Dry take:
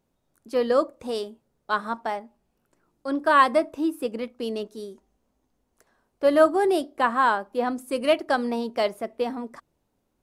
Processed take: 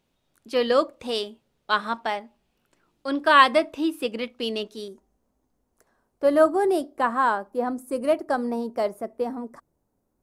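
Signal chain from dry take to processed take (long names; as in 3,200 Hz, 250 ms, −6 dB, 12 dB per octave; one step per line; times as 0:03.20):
parametric band 3,100 Hz +10 dB 1.5 octaves, from 0:04.88 −6 dB, from 0:07.50 −12.5 dB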